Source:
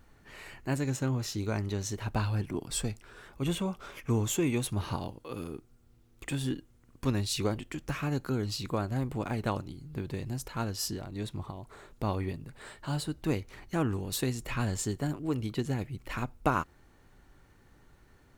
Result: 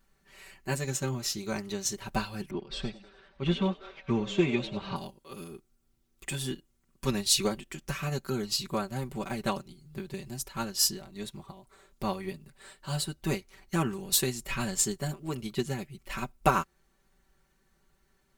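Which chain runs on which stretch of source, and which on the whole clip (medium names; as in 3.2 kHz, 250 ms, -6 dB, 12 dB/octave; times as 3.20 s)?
2.50–4.96 s: low-pass 4.1 kHz 24 dB/octave + frequency-shifting echo 97 ms, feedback 60%, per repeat +92 Hz, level -14 dB
whole clip: treble shelf 2.7 kHz +8.5 dB; comb 5.2 ms, depth 85%; upward expansion 1.5:1, over -48 dBFS; trim +1.5 dB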